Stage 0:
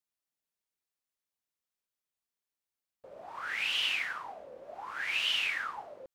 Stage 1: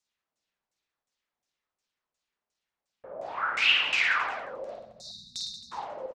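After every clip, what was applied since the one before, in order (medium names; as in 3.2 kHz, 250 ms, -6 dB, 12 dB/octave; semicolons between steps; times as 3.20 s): spectral selection erased 4.74–5.72 s, 240–3600 Hz; LFO low-pass saw down 2.8 Hz 520–7600 Hz; reverse bouncing-ball echo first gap 50 ms, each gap 1.2×, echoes 5; trim +4.5 dB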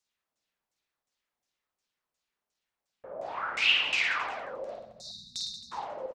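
dynamic bell 1.5 kHz, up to -6 dB, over -38 dBFS, Q 1.4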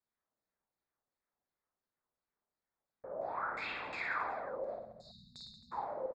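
boxcar filter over 15 samples; trim -1 dB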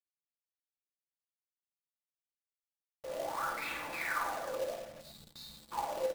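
companded quantiser 4-bit; reverberation RT60 0.30 s, pre-delay 3 ms, DRR 5.5 dB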